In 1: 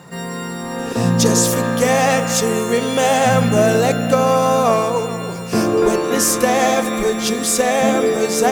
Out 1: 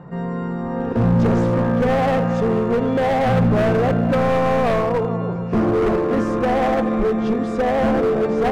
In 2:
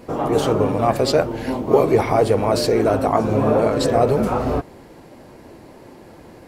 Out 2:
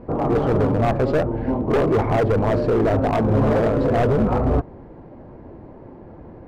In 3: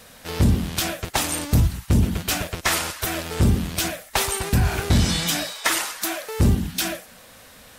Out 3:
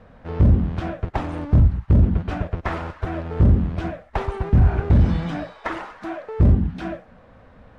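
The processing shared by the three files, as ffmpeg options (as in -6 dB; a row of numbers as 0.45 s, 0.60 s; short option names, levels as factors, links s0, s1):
-af "lowpass=1200,asoftclip=type=hard:threshold=0.158,lowshelf=f=140:g=9"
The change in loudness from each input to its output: -3.0 LU, -1.0 LU, +1.5 LU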